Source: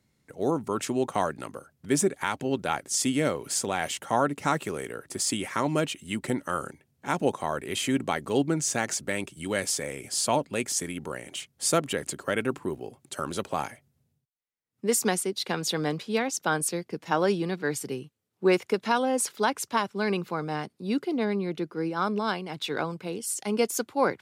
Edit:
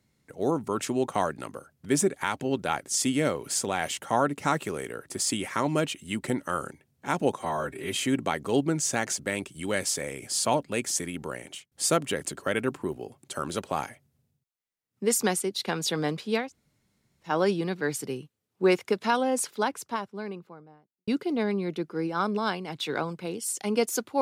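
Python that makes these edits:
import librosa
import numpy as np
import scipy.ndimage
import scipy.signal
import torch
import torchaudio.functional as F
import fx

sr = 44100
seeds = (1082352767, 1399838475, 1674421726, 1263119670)

y = fx.studio_fade_out(x, sr, start_s=18.96, length_s=1.93)
y = fx.edit(y, sr, fx.stretch_span(start_s=7.39, length_s=0.37, factor=1.5),
    fx.fade_out_span(start_s=11.24, length_s=0.29),
    fx.room_tone_fill(start_s=16.26, length_s=0.84, crossfade_s=0.16), tone=tone)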